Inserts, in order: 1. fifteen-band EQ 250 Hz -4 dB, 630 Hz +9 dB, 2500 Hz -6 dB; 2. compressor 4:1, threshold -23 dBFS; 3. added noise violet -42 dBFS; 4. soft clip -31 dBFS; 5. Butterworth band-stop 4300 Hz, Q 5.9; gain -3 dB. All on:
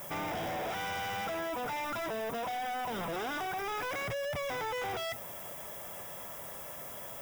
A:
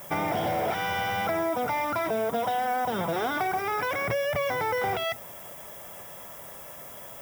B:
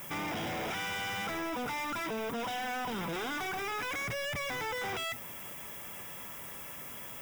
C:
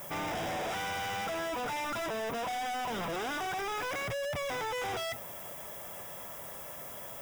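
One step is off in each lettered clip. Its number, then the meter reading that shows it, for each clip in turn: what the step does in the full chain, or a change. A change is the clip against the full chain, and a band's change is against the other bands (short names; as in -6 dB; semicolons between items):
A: 4, distortion -8 dB; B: 1, 500 Hz band -5.0 dB; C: 2, 8 kHz band +2.0 dB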